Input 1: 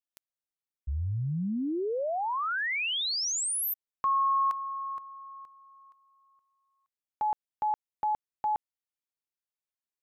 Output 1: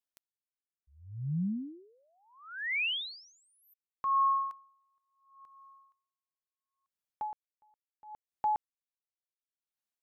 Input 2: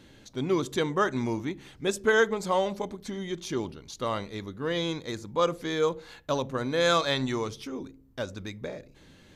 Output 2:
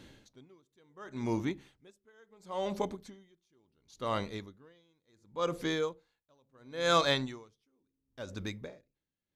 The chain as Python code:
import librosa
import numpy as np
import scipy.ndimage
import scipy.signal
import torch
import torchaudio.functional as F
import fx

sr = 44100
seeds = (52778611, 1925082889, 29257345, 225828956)

y = x * 10.0 ** (-40 * (0.5 - 0.5 * np.cos(2.0 * np.pi * 0.71 * np.arange(len(x)) / sr)) / 20.0)